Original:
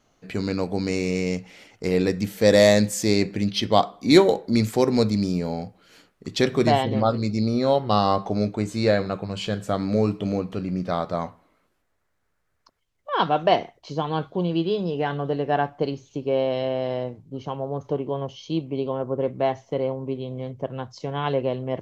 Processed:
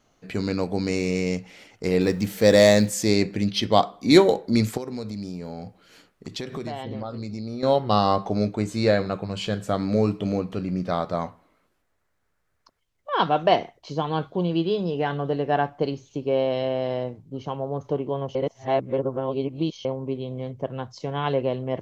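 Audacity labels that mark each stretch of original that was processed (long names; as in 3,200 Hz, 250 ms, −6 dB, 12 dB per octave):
2.010000	2.900000	mu-law and A-law mismatch coded by mu
4.770000	7.630000	downward compressor, threshold −29 dBFS
18.350000	19.850000	reverse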